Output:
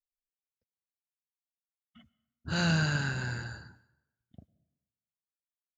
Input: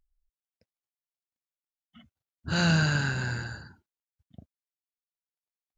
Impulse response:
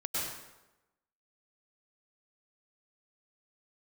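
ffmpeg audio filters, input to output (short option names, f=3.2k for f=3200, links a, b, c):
-filter_complex "[0:a]agate=range=-33dB:threshold=-59dB:ratio=3:detection=peak,asplit=2[a][b];[1:a]atrim=start_sample=2205[c];[b][c]afir=irnorm=-1:irlink=0,volume=-24.5dB[d];[a][d]amix=inputs=2:normalize=0,volume=-4dB"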